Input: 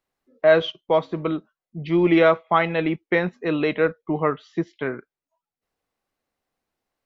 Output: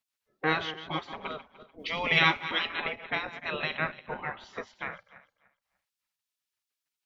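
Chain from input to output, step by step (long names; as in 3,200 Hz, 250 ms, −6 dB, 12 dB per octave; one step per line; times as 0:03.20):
feedback delay that plays each chunk backwards 148 ms, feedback 45%, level −13 dB
gate on every frequency bin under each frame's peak −15 dB weak
0:01.78–0:02.66: high-shelf EQ 2,500 Hz → 3,200 Hz +12 dB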